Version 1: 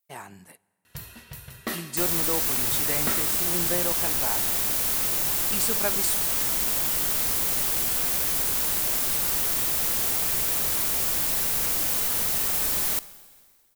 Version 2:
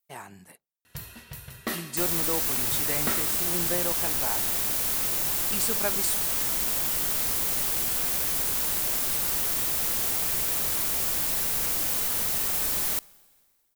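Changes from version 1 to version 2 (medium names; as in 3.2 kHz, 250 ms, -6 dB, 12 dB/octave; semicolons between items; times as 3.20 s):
speech: send off; second sound: send -8.5 dB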